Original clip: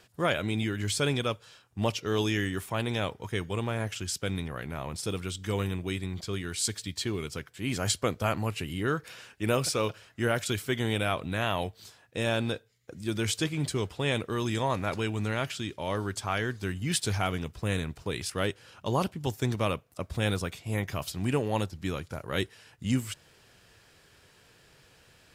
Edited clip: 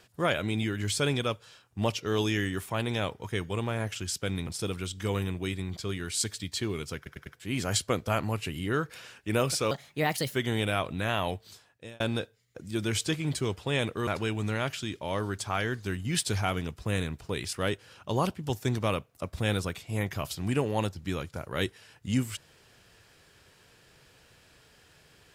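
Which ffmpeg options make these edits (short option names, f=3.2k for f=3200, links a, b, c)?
-filter_complex "[0:a]asplit=9[a][b][c][d][e][f][g][h][i];[a]atrim=end=4.472[j];[b]atrim=start=4.908:end=7.502[k];[c]atrim=start=7.398:end=7.502[l];[d]atrim=start=7.398:end=7.502[m];[e]atrim=start=7.398:end=9.854[n];[f]atrim=start=9.85:end=10.67,asetpts=PTS-STARTPTS,asetrate=57330,aresample=44100[o];[g]atrim=start=10.666:end=12.33,asetpts=PTS-STARTPTS,afade=t=out:st=1.104:d=0.56[p];[h]atrim=start=12.33:end=14.402,asetpts=PTS-STARTPTS,afade=t=in:d=0.004:c=hsin[q];[i]atrim=start=14.838[r];[j][k]acrossfade=d=0.004:c1=hsin:c2=hsin[s];[s][l]acrossfade=d=0.004:c1=hsin:c2=hsin[t];[t][m]acrossfade=d=0.004:c1=hsin:c2=hsin[u];[u][n]acrossfade=d=0.004:c1=hsin:c2=hsin[v];[v][o]acrossfade=d=0.004:c1=hsin:c2=hsin[w];[p][q]concat=n=2:v=0:a=1[x];[w][x]acrossfade=d=0.004:c1=hsin:c2=hsin[y];[y][r]acrossfade=d=0.004:c1=hsin:c2=hsin"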